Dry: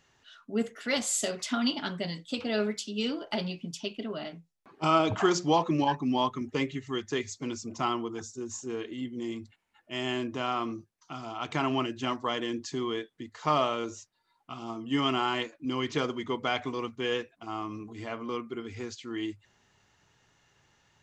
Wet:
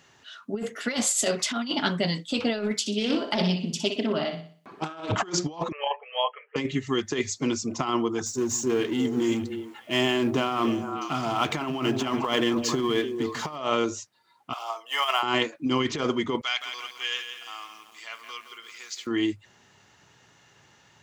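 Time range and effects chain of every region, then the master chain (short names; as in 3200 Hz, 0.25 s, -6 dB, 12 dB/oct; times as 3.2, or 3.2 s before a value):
2.8–5.12 flutter echo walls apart 10.4 m, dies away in 0.46 s + Doppler distortion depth 0.18 ms
5.72–6.56 brick-wall FIR band-pass 430–3300 Hz + envelope phaser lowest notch 550 Hz, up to 1500 Hz, full sweep at -24 dBFS
8.26–13.56 G.711 law mismatch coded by mu + delay with a stepping band-pass 0.147 s, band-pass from 150 Hz, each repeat 1.4 oct, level -5.5 dB
14.53–15.23 median filter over 5 samples + steep high-pass 580 Hz + high shelf 9700 Hz +4.5 dB
16.41–19.07 Bessel high-pass 2600 Hz + lo-fi delay 0.168 s, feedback 55%, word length 10-bit, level -8 dB
whole clip: HPF 98 Hz; negative-ratio compressor -31 dBFS, ratio -0.5; gain +6.5 dB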